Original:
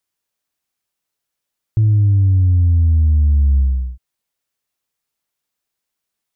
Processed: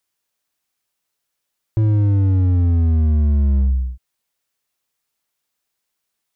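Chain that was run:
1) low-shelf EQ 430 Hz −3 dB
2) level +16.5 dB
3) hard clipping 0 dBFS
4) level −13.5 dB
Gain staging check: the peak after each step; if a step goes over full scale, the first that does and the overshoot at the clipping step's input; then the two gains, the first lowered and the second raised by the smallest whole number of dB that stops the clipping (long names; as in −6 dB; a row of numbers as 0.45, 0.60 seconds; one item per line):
−12.5, +4.0, 0.0, −13.5 dBFS
step 2, 4.0 dB
step 2 +12.5 dB, step 4 −9.5 dB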